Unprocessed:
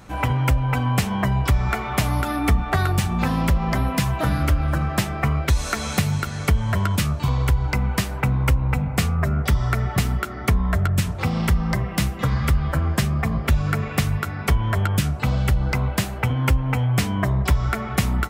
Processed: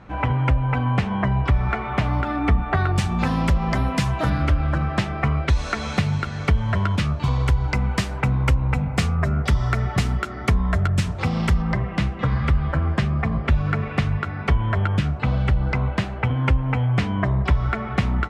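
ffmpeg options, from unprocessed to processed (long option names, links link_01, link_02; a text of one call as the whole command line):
ffmpeg -i in.wav -af "asetnsamples=nb_out_samples=441:pad=0,asendcmd='2.96 lowpass f 7000;4.3 lowpass f 4100;7.24 lowpass f 6900;11.62 lowpass f 3100',lowpass=2600" out.wav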